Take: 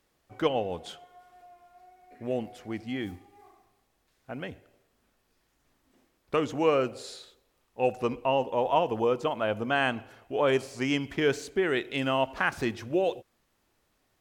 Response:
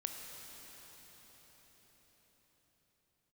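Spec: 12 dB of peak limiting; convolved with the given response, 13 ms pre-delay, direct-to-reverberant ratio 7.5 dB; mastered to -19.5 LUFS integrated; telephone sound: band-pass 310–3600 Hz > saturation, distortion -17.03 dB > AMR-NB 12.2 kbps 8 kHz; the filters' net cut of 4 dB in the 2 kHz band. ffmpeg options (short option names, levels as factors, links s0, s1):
-filter_complex "[0:a]equalizer=f=2000:t=o:g=-5,alimiter=limit=0.0668:level=0:latency=1,asplit=2[s0][s1];[1:a]atrim=start_sample=2205,adelay=13[s2];[s1][s2]afir=irnorm=-1:irlink=0,volume=0.422[s3];[s0][s3]amix=inputs=2:normalize=0,highpass=310,lowpass=3600,asoftclip=threshold=0.0473,volume=8.41" -ar 8000 -c:a libopencore_amrnb -b:a 12200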